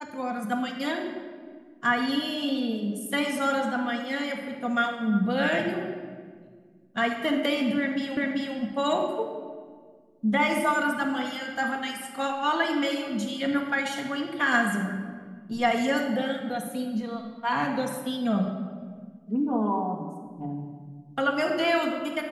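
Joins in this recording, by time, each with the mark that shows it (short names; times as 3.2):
8.17 repeat of the last 0.39 s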